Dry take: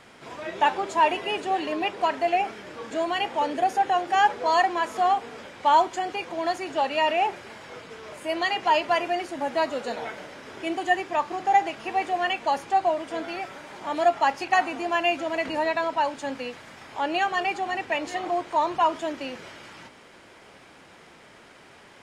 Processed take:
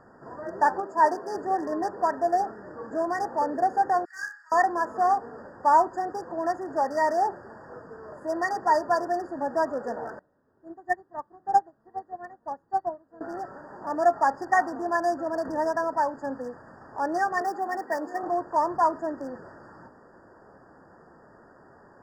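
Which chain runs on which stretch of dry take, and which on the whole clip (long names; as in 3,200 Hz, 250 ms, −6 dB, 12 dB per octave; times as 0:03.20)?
0:00.80–0:01.35: high-pass filter 180 Hz + multiband upward and downward expander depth 40%
0:04.05–0:04.52: Butterworth high-pass 1,800 Hz + flutter between parallel walls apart 5.3 metres, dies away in 0.44 s
0:10.19–0:13.21: low-shelf EQ 230 Hz +9 dB + expander for the loud parts 2.5 to 1, over −32 dBFS
0:17.41–0:18.23: high-pass filter 200 Hz 24 dB per octave + noise that follows the level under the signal 23 dB
whole clip: adaptive Wiener filter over 15 samples; brick-wall band-stop 1,900–4,600 Hz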